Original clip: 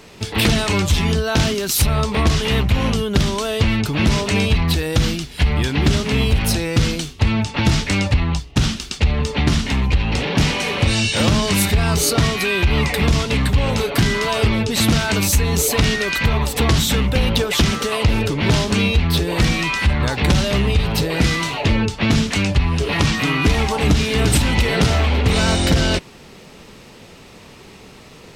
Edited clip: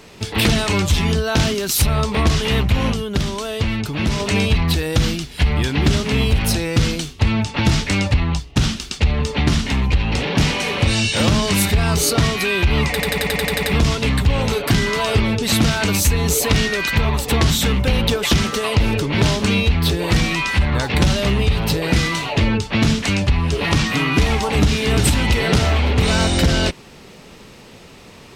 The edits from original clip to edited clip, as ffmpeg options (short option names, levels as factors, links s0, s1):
-filter_complex "[0:a]asplit=11[s0][s1][s2][s3][s4][s5][s6][s7][s8][s9][s10];[s0]atrim=end=2.932[s11];[s1]atrim=start=2.928:end=4.202,asetpts=PTS-STARTPTS,volume=0.668[s12];[s2]atrim=start=4.198:end=13.002[s13];[s3]atrim=start=12.908:end=13.002[s14];[s4]atrim=start=12.908:end=13.002[s15];[s5]atrim=start=12.908:end=13.002[s16];[s6]atrim=start=12.908:end=13.002[s17];[s7]atrim=start=12.908:end=13.002[s18];[s8]atrim=start=12.908:end=13.002[s19];[s9]atrim=start=12.908:end=13.002[s20];[s10]atrim=start=12.908[s21];[s11][s12]acrossfade=d=0.004:c1=hsin:c2=hsin[s22];[s22][s13]acrossfade=d=0.004:c1=hsin:c2=hsin[s23];[s23][s14]acrossfade=d=0.004:c1=hsin:c2=hsin[s24];[s24][s15]acrossfade=d=0.004:c1=hsin:c2=hsin[s25];[s25][s16]acrossfade=d=0.004:c1=hsin:c2=hsin[s26];[s26][s17]acrossfade=d=0.004:c1=hsin:c2=hsin[s27];[s27][s18]acrossfade=d=0.004:c1=hsin:c2=hsin[s28];[s28][s19]acrossfade=d=0.004:c1=hsin:c2=hsin[s29];[s29][s20]acrossfade=d=0.004:c1=hsin:c2=hsin[s30];[s30][s21]acrossfade=d=0.004:c1=hsin:c2=hsin"